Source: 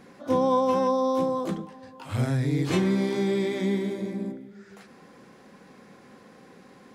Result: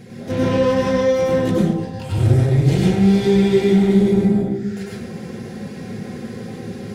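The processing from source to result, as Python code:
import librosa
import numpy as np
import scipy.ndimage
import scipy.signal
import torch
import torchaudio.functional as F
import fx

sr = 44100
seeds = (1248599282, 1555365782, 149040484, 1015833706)

p1 = fx.peak_eq(x, sr, hz=100.0, db=15.0, octaves=0.8)
p2 = fx.rider(p1, sr, range_db=10, speed_s=0.5)
p3 = p1 + (p2 * librosa.db_to_amplitude(3.0))
p4 = 10.0 ** (-18.5 / 20.0) * np.tanh(p3 / 10.0 ** (-18.5 / 20.0))
p5 = fx.peak_eq(p4, sr, hz=1100.0, db=-14.0, octaves=0.91)
p6 = fx.notch_comb(p5, sr, f0_hz=290.0)
p7 = fx.rev_plate(p6, sr, seeds[0], rt60_s=0.78, hf_ratio=0.55, predelay_ms=85, drr_db=-5.0)
y = p7 * librosa.db_to_amplitude(1.5)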